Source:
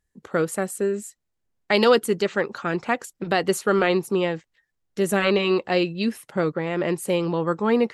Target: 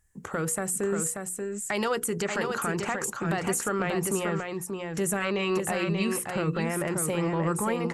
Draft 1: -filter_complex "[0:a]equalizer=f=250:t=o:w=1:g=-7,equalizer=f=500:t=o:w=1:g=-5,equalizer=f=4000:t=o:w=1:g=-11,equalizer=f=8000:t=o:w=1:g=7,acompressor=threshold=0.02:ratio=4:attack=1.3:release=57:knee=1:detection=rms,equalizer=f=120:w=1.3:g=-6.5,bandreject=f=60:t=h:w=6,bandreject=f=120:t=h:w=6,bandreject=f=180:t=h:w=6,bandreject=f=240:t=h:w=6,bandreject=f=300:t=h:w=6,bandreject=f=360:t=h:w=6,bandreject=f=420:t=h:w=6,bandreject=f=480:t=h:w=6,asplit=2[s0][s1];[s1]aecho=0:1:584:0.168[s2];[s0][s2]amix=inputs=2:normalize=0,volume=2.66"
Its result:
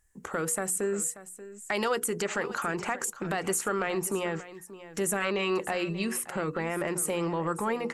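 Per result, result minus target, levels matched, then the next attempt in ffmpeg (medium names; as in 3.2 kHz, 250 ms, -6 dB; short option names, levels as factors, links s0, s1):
echo-to-direct -10.5 dB; 125 Hz band -5.0 dB
-filter_complex "[0:a]equalizer=f=250:t=o:w=1:g=-7,equalizer=f=500:t=o:w=1:g=-5,equalizer=f=4000:t=o:w=1:g=-11,equalizer=f=8000:t=o:w=1:g=7,acompressor=threshold=0.02:ratio=4:attack=1.3:release=57:knee=1:detection=rms,equalizer=f=120:w=1.3:g=-6.5,bandreject=f=60:t=h:w=6,bandreject=f=120:t=h:w=6,bandreject=f=180:t=h:w=6,bandreject=f=240:t=h:w=6,bandreject=f=300:t=h:w=6,bandreject=f=360:t=h:w=6,bandreject=f=420:t=h:w=6,bandreject=f=480:t=h:w=6,asplit=2[s0][s1];[s1]aecho=0:1:584:0.562[s2];[s0][s2]amix=inputs=2:normalize=0,volume=2.66"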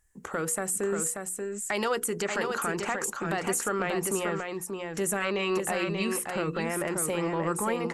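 125 Hz band -4.5 dB
-filter_complex "[0:a]equalizer=f=250:t=o:w=1:g=-7,equalizer=f=500:t=o:w=1:g=-5,equalizer=f=4000:t=o:w=1:g=-11,equalizer=f=8000:t=o:w=1:g=7,acompressor=threshold=0.02:ratio=4:attack=1.3:release=57:knee=1:detection=rms,equalizer=f=120:w=1.3:g=4,bandreject=f=60:t=h:w=6,bandreject=f=120:t=h:w=6,bandreject=f=180:t=h:w=6,bandreject=f=240:t=h:w=6,bandreject=f=300:t=h:w=6,bandreject=f=360:t=h:w=6,bandreject=f=420:t=h:w=6,bandreject=f=480:t=h:w=6,asplit=2[s0][s1];[s1]aecho=0:1:584:0.562[s2];[s0][s2]amix=inputs=2:normalize=0,volume=2.66"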